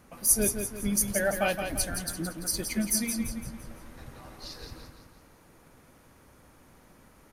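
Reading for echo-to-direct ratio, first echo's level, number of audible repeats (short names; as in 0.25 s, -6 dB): -6.0 dB, -7.0 dB, 4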